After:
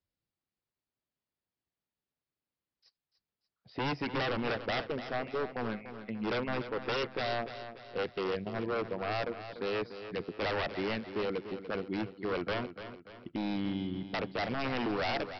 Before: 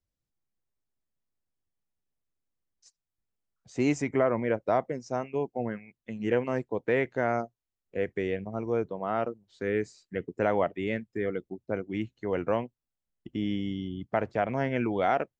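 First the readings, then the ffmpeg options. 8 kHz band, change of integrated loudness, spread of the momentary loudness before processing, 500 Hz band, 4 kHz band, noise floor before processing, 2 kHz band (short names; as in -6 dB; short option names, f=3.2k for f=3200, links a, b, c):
n/a, -4.5 dB, 9 LU, -6.0 dB, +8.0 dB, under -85 dBFS, -1.0 dB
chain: -af "highpass=f=110:p=1,aresample=11025,aeval=exprs='0.0447*(abs(mod(val(0)/0.0447+3,4)-2)-1)':c=same,aresample=44100,aecho=1:1:292|584|876|1168|1460:0.282|0.127|0.0571|0.0257|0.0116"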